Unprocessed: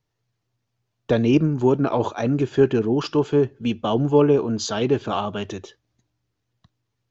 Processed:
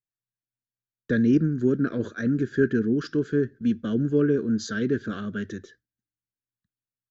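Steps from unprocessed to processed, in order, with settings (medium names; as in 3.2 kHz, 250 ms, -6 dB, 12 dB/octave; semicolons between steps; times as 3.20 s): gate with hold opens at -40 dBFS; FFT filter 140 Hz 0 dB, 220 Hz +7 dB, 340 Hz 0 dB, 500 Hz -3 dB, 870 Hz -28 dB, 1.6 kHz +11 dB, 2.6 kHz -13 dB, 3.9 kHz -3 dB; trim -5 dB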